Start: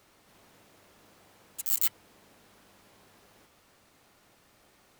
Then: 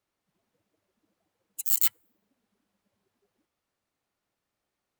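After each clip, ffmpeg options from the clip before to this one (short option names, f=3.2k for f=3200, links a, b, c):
-af "afftdn=nr=25:nf=-47,volume=3.5dB"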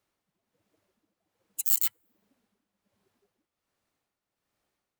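-af "tremolo=f=1.3:d=0.63,volume=3.5dB"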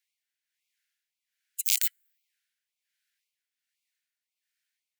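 -af "aeval=exprs='(mod(1.68*val(0)+1,2)-1)/1.68':c=same,asuperstop=centerf=760:order=20:qfactor=0.71,afftfilt=real='re*gte(b*sr/1024,750*pow(2100/750,0.5+0.5*sin(2*PI*1.9*pts/sr)))':imag='im*gte(b*sr/1024,750*pow(2100/750,0.5+0.5*sin(2*PI*1.9*pts/sr)))':win_size=1024:overlap=0.75"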